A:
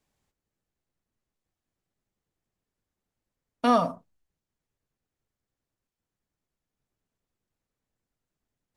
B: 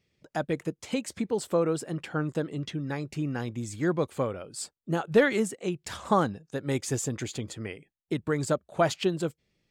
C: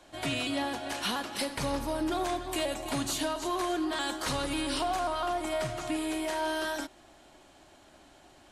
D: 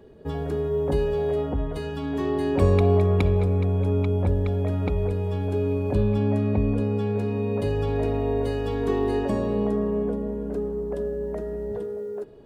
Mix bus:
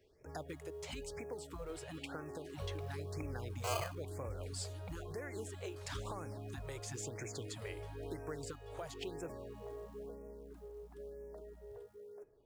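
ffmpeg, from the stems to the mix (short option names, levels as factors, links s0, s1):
-filter_complex "[0:a]acrusher=samples=34:mix=1:aa=0.000001:lfo=1:lforange=20.4:lforate=0.46,volume=0.178[s0];[1:a]acrossover=split=300|7200[s1][s2][s3];[s1]acompressor=threshold=0.00891:ratio=4[s4];[s2]acompressor=threshold=0.0126:ratio=4[s5];[s3]acompressor=threshold=0.002:ratio=4[s6];[s4][s5][s6]amix=inputs=3:normalize=0,volume=0.75[s7];[2:a]acrossover=split=410[s8][s9];[s9]acompressor=threshold=0.00891:ratio=6[s10];[s8][s10]amix=inputs=2:normalize=0,adelay=1550,volume=0.126[s11];[3:a]volume=0.119[s12];[s7][s12]amix=inputs=2:normalize=0,acrusher=bits=8:mode=log:mix=0:aa=0.000001,alimiter=level_in=2:limit=0.0631:level=0:latency=1:release=436,volume=0.501,volume=1[s13];[s0][s11][s13]amix=inputs=3:normalize=0,equalizer=f=210:t=o:w=0.77:g=-12,afftfilt=real='re*(1-between(b*sr/1024,200*pow(3800/200,0.5+0.5*sin(2*PI*1*pts/sr))/1.41,200*pow(3800/200,0.5+0.5*sin(2*PI*1*pts/sr))*1.41))':imag='im*(1-between(b*sr/1024,200*pow(3800/200,0.5+0.5*sin(2*PI*1*pts/sr))/1.41,200*pow(3800/200,0.5+0.5*sin(2*PI*1*pts/sr))*1.41))':win_size=1024:overlap=0.75"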